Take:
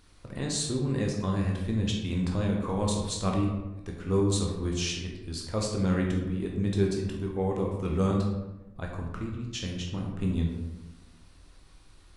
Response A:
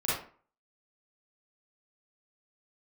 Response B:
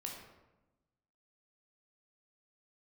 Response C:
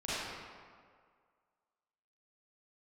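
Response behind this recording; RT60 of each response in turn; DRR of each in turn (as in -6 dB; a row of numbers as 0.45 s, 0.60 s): B; 0.45 s, 1.0 s, 1.9 s; -9.5 dB, -1.0 dB, -12.5 dB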